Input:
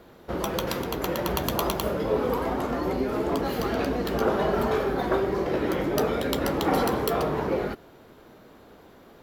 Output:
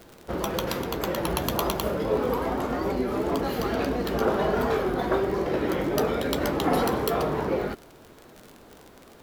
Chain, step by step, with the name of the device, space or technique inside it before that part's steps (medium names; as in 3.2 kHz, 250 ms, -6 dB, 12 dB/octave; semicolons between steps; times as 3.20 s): warped LP (warped record 33 1/3 rpm, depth 100 cents; crackle 50 per s -33 dBFS; pink noise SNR 33 dB)